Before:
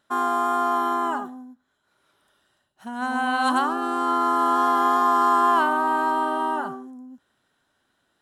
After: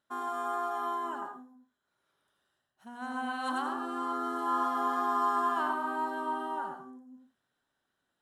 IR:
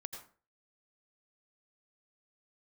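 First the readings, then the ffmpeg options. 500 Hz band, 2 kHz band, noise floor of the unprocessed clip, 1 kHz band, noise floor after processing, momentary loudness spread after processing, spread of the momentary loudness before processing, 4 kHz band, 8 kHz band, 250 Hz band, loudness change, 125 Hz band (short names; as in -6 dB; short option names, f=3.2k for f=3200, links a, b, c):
-10.0 dB, -11.0 dB, -72 dBFS, -10.5 dB, -83 dBFS, 15 LU, 12 LU, -11.5 dB, under -10 dB, -10.5 dB, -10.5 dB, n/a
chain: -filter_complex "[1:a]atrim=start_sample=2205,afade=t=out:st=0.24:d=0.01,atrim=end_sample=11025[a];[0:a][a]afir=irnorm=-1:irlink=0,volume=-8.5dB"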